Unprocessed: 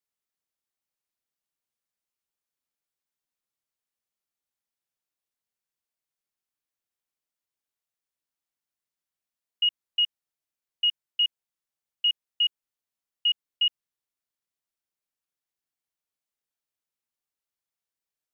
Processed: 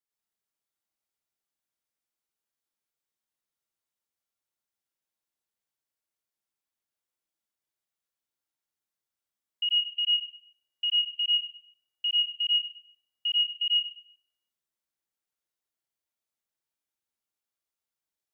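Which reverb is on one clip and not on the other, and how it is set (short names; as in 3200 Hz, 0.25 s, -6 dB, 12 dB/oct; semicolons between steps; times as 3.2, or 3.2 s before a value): plate-style reverb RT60 0.66 s, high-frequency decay 0.9×, pre-delay 80 ms, DRR -3.5 dB; gain -5.5 dB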